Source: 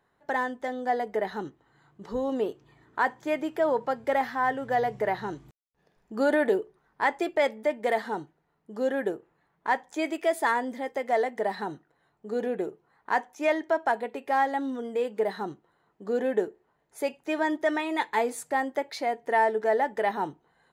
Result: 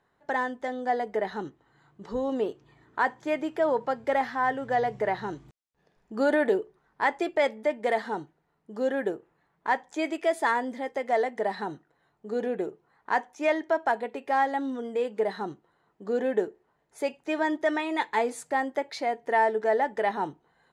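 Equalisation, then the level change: LPF 9000 Hz 12 dB/oct; 0.0 dB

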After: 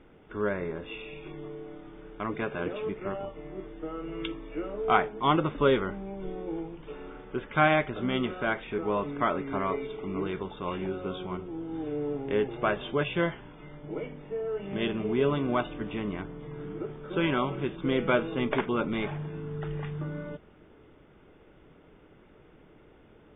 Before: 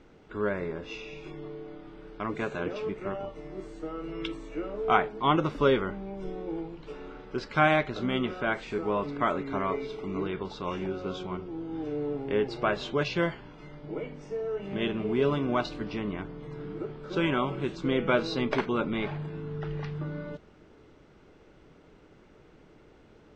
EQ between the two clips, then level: brick-wall FIR low-pass 3700 Hz; 0.0 dB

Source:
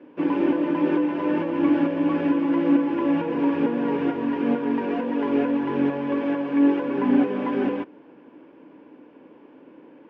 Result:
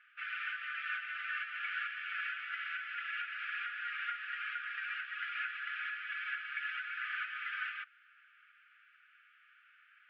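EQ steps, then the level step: brick-wall FIR high-pass 1200 Hz; air absorption 290 m; +4.5 dB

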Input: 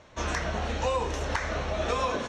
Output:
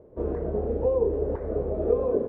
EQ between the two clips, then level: synth low-pass 430 Hz, resonance Q 4.9; 0.0 dB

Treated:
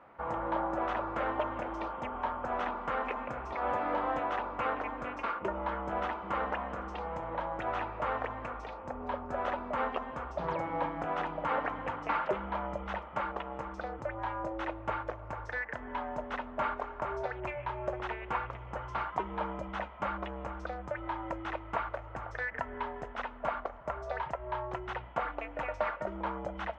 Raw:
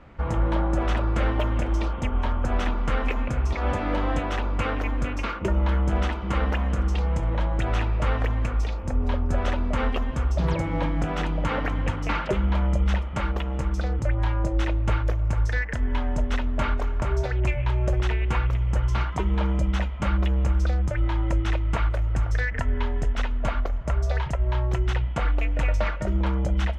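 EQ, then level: band-pass 910 Hz, Q 1.2; 0.0 dB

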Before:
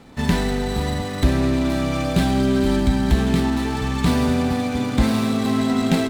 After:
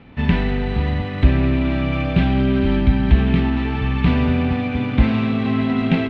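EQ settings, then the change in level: ladder low-pass 3100 Hz, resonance 50%; bell 79 Hz +8.5 dB 2.8 oct; +6.5 dB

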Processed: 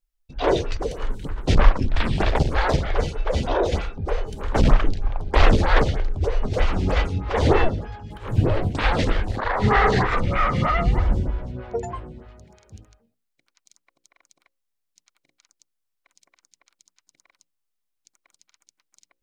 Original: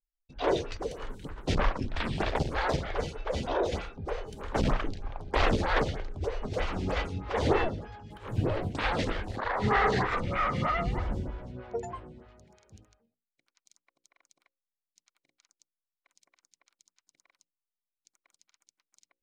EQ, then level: low shelf 85 Hz +9 dB; +6.5 dB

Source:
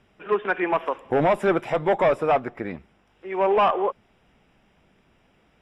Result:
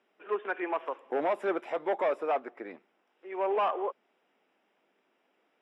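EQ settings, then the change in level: HPF 290 Hz 24 dB/oct; high shelf 4800 Hz -8 dB; -8.5 dB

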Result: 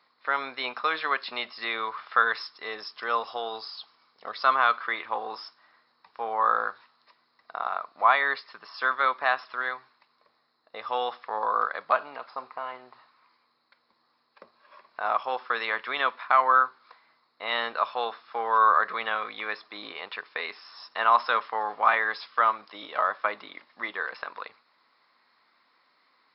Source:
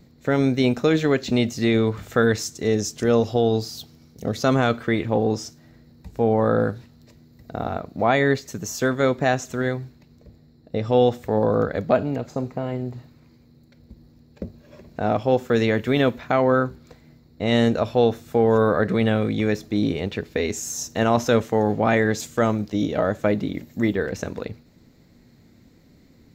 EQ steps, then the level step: resonant high-pass 1100 Hz, resonance Q 4.9; brick-wall FIR low-pass 5400 Hz; -3.5 dB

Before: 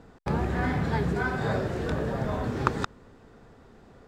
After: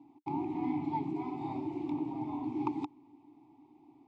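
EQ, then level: vowel filter u; fixed phaser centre 310 Hz, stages 8; +7.0 dB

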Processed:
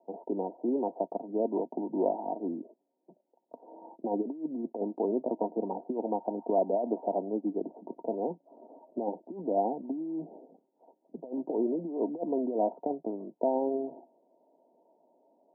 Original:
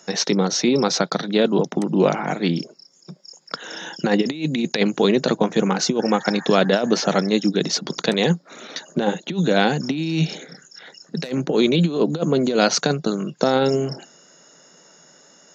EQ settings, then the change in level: HPF 320 Hz 24 dB/oct; rippled Chebyshev low-pass 960 Hz, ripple 9 dB; air absorption 400 m; -2.0 dB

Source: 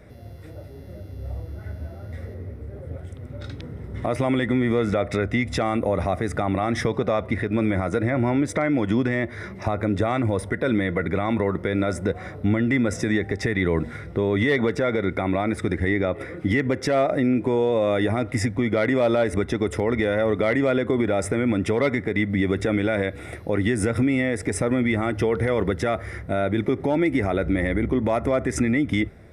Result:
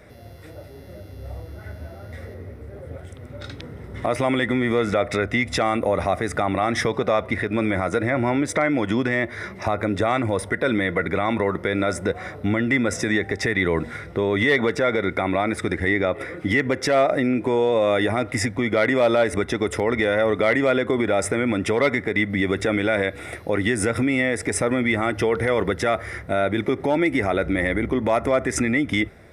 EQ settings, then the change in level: low shelf 390 Hz -8.5 dB; +5.0 dB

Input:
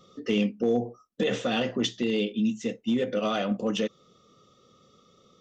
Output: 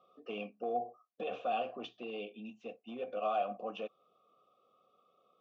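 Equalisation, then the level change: vowel filter a; air absorption 130 m; notch 2000 Hz, Q 14; +3.0 dB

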